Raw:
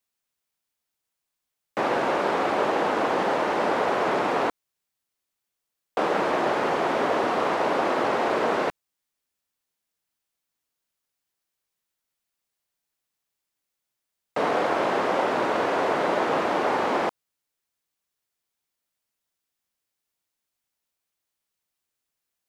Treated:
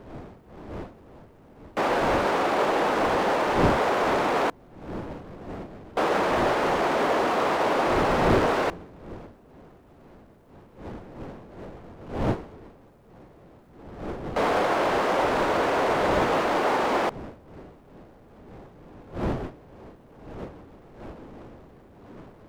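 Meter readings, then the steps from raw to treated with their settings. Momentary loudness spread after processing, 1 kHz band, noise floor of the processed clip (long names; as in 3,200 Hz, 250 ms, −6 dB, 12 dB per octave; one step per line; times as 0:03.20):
21 LU, +0.5 dB, −53 dBFS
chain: wind on the microphone 480 Hz −36 dBFS
power curve on the samples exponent 0.7
expander for the loud parts 1.5 to 1, over −33 dBFS
level −1.5 dB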